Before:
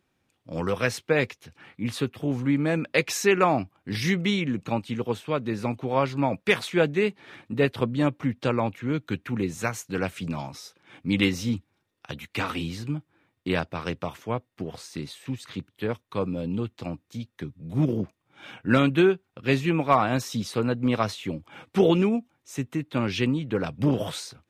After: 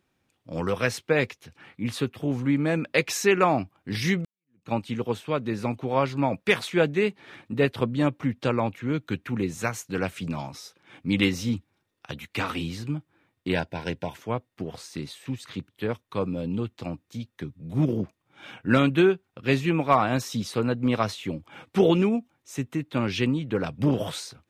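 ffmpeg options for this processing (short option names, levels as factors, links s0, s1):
-filter_complex "[0:a]asettb=1/sr,asplit=3[s0][s1][s2];[s0]atrim=end=13.524[s3];[s1]atrim=start=13.52:end=14.17,asetpts=PTS-STARTPTS,afade=t=in:d=0.004:c=qsin,afade=t=out:st=0.646:d=0.004:c=qsin,asuperstop=centerf=1200:order=12:qfactor=3.9[s4];[s2]atrim=start=14.166[s5];[s3][s4]acrossfade=d=0.004:c1=hsin:c2=qsin[s6];[s6][s5]acrossfade=d=0.004:c1=qsin:c2=hsin,asplit=2[s7][s8];[s7]atrim=end=4.25,asetpts=PTS-STARTPTS,afade=t=out:st=4.246:d=0.004:c=hsin[s9];[s8]atrim=start=4.25,asetpts=PTS-STARTPTS,afade=t=in:d=0.47:c=exp[s10];[s9][s10]concat=n=2:v=0:a=1"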